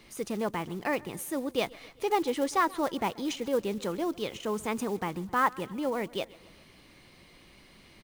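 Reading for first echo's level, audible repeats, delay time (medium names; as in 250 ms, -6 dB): -22.5 dB, 3, 132 ms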